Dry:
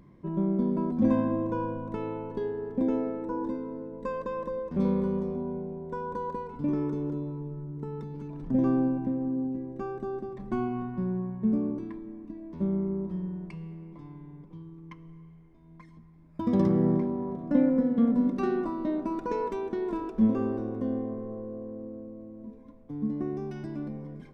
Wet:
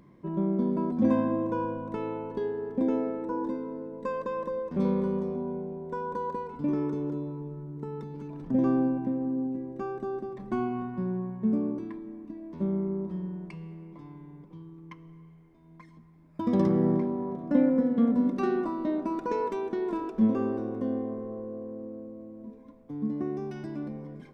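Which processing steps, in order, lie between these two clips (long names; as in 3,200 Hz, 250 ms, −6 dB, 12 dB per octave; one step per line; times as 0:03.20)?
low-shelf EQ 100 Hz −11 dB
level +1.5 dB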